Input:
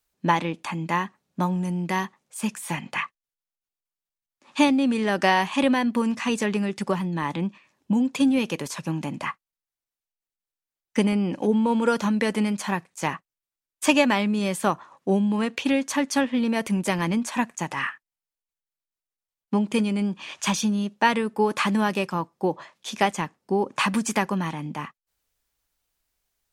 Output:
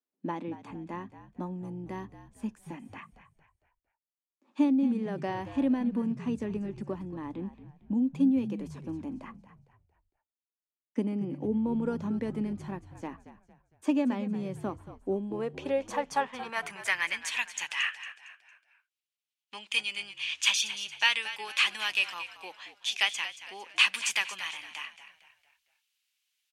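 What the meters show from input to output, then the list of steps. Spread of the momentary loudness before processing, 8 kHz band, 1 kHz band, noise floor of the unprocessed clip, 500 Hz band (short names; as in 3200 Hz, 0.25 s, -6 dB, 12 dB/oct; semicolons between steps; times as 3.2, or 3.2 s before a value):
10 LU, -4.5 dB, -12.0 dB, under -85 dBFS, -10.0 dB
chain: band-pass sweep 260 Hz -> 2800 Hz, 14.98–17.34; RIAA curve recording; notches 50/100/150 Hz; frequency-shifting echo 0.228 s, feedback 40%, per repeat -59 Hz, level -13 dB; gain +2.5 dB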